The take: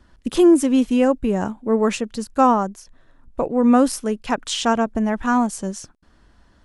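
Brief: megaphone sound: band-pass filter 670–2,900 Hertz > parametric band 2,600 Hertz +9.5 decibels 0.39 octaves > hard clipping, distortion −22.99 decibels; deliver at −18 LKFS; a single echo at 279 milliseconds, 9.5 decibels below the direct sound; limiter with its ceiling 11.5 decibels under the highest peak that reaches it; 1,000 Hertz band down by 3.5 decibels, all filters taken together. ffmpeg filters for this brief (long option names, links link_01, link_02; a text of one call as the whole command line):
ffmpeg -i in.wav -af "equalizer=frequency=1000:width_type=o:gain=-3,alimiter=limit=-16.5dB:level=0:latency=1,highpass=670,lowpass=2900,equalizer=frequency=2600:width_type=o:width=0.39:gain=9.5,aecho=1:1:279:0.335,asoftclip=type=hard:threshold=-20dB,volume=14.5dB" out.wav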